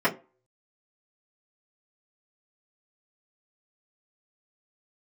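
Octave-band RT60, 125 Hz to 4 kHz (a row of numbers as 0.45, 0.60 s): 0.25, 0.30, 0.35, 0.30, 0.25, 0.15 s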